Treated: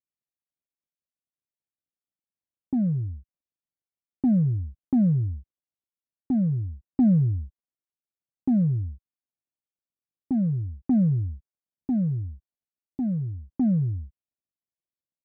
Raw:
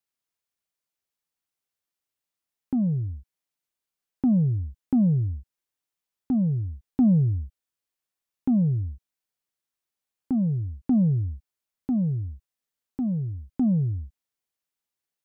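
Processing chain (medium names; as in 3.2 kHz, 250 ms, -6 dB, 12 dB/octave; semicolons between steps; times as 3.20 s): median filter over 41 samples; comb of notches 440 Hz; level-controlled noise filter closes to 650 Hz, open at -22.5 dBFS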